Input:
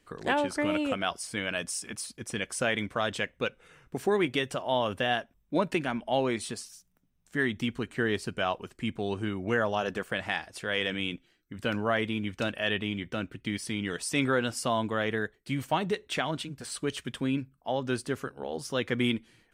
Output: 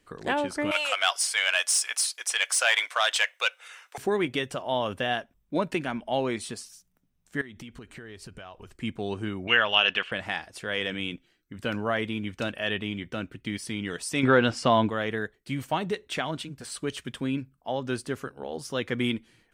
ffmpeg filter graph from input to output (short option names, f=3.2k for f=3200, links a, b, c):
-filter_complex "[0:a]asettb=1/sr,asplit=3[a][b][c];[a]atrim=end=0.714[d];[b]atrim=start=0.71:end=3.98,asetpts=PTS-STARTPTS,afade=t=in:d=0.004:c=qsin,afade=t=out:st=3.266:d=0.004:c=qsin,highshelf=f=2.7k:g=11.5,asplit=2[e][f];[f]highpass=f=720:p=1,volume=12dB,asoftclip=type=tanh:threshold=-10.5dB[g];[e][g]amix=inputs=2:normalize=0,lowpass=f=5.2k:p=1,volume=-6dB,highpass=f=630:w=0.5412,highpass=f=630:w=1.3066[h];[c]atrim=start=3.976[i];[d][h]acrossfade=d=0.004:c1=hsin:c2=qsin[j];[j][i]acrossfade=d=0.004:c1=qsin:c2=hsin,asettb=1/sr,asplit=3[k][l][m];[k]atrim=end=7.414[n];[l]atrim=start=7.41:end=8.76,asetpts=PTS-STARTPTS,afade=t=in:d=0.004:c=qsin,afade=t=out:st=1.346:d=0.004:c=qsin,asubboost=boost=10:cutoff=90,acompressor=threshold=-39dB:ratio=12:attack=3.2:release=140:knee=1:detection=peak[o];[m]atrim=start=8.756[p];[n][o]acrossfade=d=0.004:c1=hsin:c2=qsin[q];[q][p]acrossfade=d=0.004:c1=qsin:c2=hsin,asettb=1/sr,asplit=3[r][s][t];[r]atrim=end=9.474[u];[s]atrim=start=9.47:end=10.12,asetpts=PTS-STARTPTS,afade=t=in:d=0.004:c=qsin,afade=t=out:st=0.646:d=0.004:c=qsin,lowpass=f=2.9k:t=q:w=5.4,tiltshelf=f=740:g=-8.5[v];[t]atrim=start=10.116[w];[u][v]acrossfade=d=0.004:c1=hsin:c2=qsin[x];[x][w]acrossfade=d=0.004:c1=qsin:c2=hsin,asettb=1/sr,asplit=3[y][z][aa];[y]atrim=end=14.234[ab];[z]atrim=start=14.23:end=14.9,asetpts=PTS-STARTPTS,afade=t=in:d=0.004:c=qsin,afade=t=out:st=0.666:d=0.004:c=qsin,lowpass=4.4k,acontrast=83[ac];[aa]atrim=start=14.896[ad];[ab][ac]acrossfade=d=0.004:c1=hsin:c2=qsin[ae];[ae][ad]acrossfade=d=0.004:c1=qsin:c2=hsin"